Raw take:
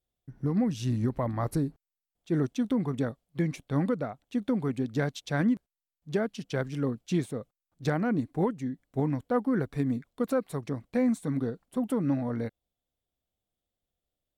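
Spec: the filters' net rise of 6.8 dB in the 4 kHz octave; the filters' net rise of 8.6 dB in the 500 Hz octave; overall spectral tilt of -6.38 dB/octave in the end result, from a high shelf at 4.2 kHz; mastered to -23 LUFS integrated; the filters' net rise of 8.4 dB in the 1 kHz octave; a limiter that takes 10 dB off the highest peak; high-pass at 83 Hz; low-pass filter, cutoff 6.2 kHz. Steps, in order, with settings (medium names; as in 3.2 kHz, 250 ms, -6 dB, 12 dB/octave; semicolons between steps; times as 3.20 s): high-pass 83 Hz; low-pass 6.2 kHz; peaking EQ 500 Hz +8 dB; peaking EQ 1 kHz +7.5 dB; peaking EQ 4 kHz +5 dB; treble shelf 4.2 kHz +6.5 dB; trim +6 dB; peak limiter -11.5 dBFS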